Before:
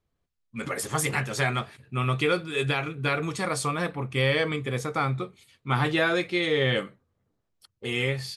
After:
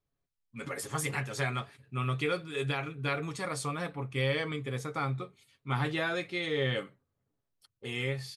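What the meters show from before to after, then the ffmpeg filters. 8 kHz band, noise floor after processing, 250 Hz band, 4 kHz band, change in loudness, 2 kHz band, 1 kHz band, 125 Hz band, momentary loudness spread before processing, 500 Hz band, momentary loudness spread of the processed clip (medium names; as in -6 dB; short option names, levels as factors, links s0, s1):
-7.0 dB, -84 dBFS, -7.0 dB, -7.0 dB, -6.5 dB, -7.0 dB, -7.0 dB, -5.0 dB, 10 LU, -7.0 dB, 9 LU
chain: -af "aecho=1:1:7.2:0.34,volume=0.422"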